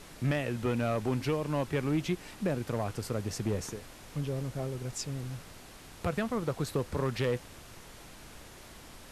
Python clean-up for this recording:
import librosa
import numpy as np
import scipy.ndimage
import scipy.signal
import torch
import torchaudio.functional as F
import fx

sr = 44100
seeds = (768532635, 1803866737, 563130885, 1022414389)

y = fx.fix_declip(x, sr, threshold_db=-22.5)
y = fx.noise_reduce(y, sr, print_start_s=8.43, print_end_s=8.93, reduce_db=28.0)